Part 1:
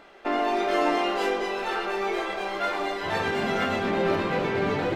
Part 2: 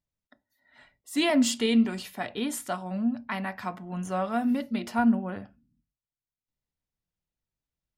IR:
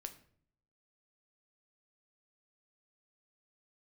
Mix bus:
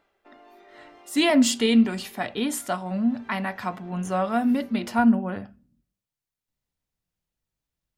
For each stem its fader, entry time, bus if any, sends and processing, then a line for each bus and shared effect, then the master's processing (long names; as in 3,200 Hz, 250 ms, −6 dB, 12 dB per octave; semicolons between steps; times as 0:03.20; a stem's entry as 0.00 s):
−17.0 dB, 0.00 s, no send, automatic ducking −10 dB, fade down 0.35 s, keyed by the second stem
+3.0 dB, 0.00 s, send −13 dB, no processing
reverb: on, RT60 0.55 s, pre-delay 7 ms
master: no processing